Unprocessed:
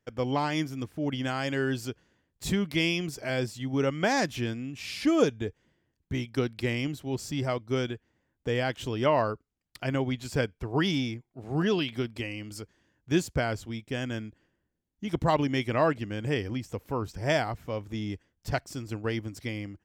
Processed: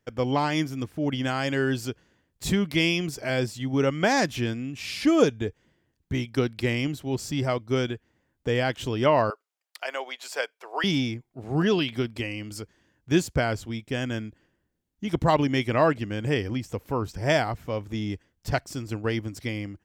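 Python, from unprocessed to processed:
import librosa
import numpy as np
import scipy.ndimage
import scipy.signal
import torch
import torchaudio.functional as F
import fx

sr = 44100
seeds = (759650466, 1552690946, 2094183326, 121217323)

y = fx.highpass(x, sr, hz=560.0, slope=24, at=(9.3, 10.84))
y = y * librosa.db_to_amplitude(3.5)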